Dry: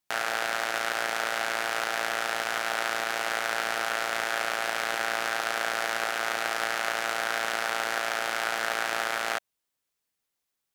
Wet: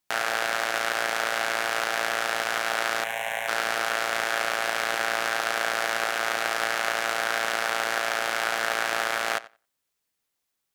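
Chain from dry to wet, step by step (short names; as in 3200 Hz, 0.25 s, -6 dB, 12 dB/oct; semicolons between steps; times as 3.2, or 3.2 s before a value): 3.04–3.48 fixed phaser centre 1300 Hz, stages 6; darkening echo 90 ms, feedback 15%, low-pass 4400 Hz, level -18 dB; gain +2.5 dB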